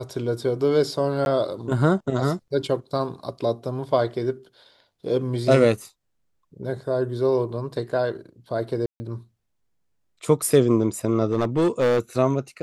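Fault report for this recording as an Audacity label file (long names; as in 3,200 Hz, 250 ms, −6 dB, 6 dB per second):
1.250000	1.260000	drop-out 11 ms
8.860000	9.000000	drop-out 140 ms
11.260000	11.990000	clipping −16 dBFS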